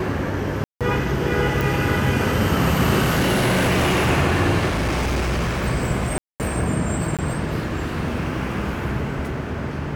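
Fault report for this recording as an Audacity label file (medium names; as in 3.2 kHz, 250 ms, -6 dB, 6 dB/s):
0.640000	0.810000	dropout 167 ms
1.610000	1.610000	pop
3.010000	4.090000	clipped -15 dBFS
4.680000	5.640000	clipped -18.5 dBFS
6.180000	6.400000	dropout 218 ms
7.170000	7.190000	dropout 17 ms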